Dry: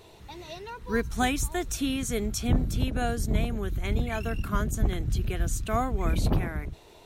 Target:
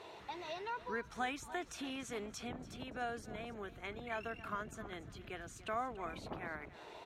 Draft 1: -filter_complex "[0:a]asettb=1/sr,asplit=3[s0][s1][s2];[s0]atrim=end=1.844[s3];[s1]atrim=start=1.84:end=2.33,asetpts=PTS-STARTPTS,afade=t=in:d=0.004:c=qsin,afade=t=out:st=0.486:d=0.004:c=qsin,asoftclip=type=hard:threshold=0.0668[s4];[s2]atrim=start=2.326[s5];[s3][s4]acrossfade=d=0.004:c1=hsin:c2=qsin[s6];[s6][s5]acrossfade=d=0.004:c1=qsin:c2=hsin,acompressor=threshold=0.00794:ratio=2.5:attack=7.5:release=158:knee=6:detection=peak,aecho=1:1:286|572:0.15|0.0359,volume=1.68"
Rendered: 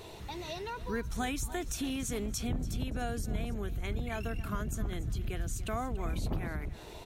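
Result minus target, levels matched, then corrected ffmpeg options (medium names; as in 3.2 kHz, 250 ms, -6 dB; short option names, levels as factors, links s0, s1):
1 kHz band -6.0 dB
-filter_complex "[0:a]asettb=1/sr,asplit=3[s0][s1][s2];[s0]atrim=end=1.844[s3];[s1]atrim=start=1.84:end=2.33,asetpts=PTS-STARTPTS,afade=t=in:d=0.004:c=qsin,afade=t=out:st=0.486:d=0.004:c=qsin,asoftclip=type=hard:threshold=0.0668[s4];[s2]atrim=start=2.326[s5];[s3][s4]acrossfade=d=0.004:c1=hsin:c2=qsin[s6];[s6][s5]acrossfade=d=0.004:c1=qsin:c2=hsin,acompressor=threshold=0.00794:ratio=2.5:attack=7.5:release=158:knee=6:detection=peak,bandpass=f=1200:t=q:w=0.63:csg=0,aecho=1:1:286|572:0.15|0.0359,volume=1.68"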